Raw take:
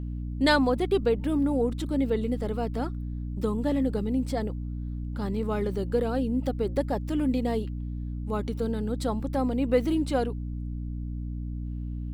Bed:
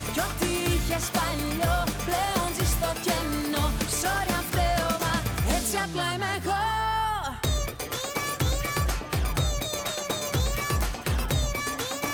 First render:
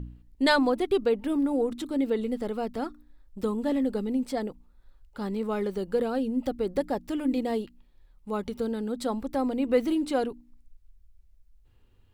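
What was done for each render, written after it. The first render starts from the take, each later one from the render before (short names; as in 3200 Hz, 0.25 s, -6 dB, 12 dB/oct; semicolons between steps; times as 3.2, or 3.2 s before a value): de-hum 60 Hz, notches 5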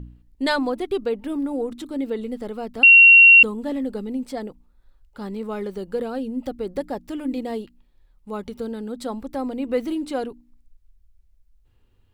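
2.83–3.43 bleep 2740 Hz -6 dBFS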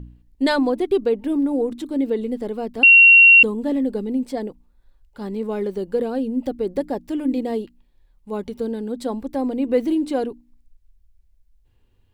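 notch 1300 Hz, Q 8.2; dynamic EQ 340 Hz, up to +6 dB, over -36 dBFS, Q 0.86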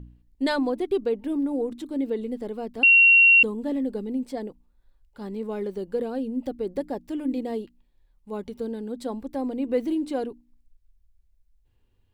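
gain -5.5 dB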